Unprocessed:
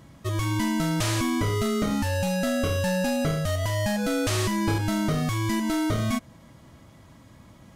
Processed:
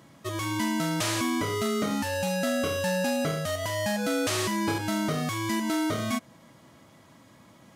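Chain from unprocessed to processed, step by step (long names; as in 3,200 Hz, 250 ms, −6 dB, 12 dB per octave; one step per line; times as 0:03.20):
high-pass filter 100 Hz
low-shelf EQ 140 Hz −10.5 dB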